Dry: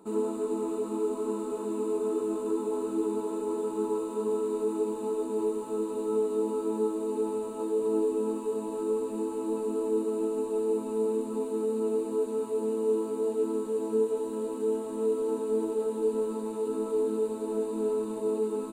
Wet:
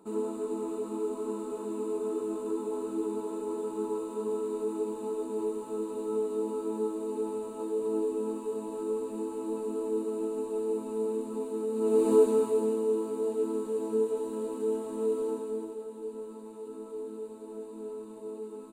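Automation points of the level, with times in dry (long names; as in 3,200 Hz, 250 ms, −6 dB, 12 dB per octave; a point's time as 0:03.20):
0:11.71 −3 dB
0:12.11 +9 dB
0:12.89 −1.5 dB
0:15.23 −1.5 dB
0:15.84 −11 dB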